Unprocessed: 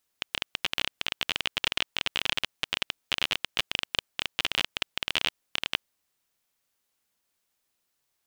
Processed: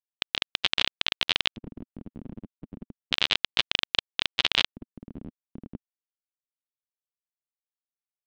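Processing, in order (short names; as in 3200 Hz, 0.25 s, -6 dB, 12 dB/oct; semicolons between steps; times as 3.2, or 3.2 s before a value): spectral contrast lowered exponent 0.62; bit-crush 8-bit; LFO low-pass square 0.32 Hz 240–3800 Hz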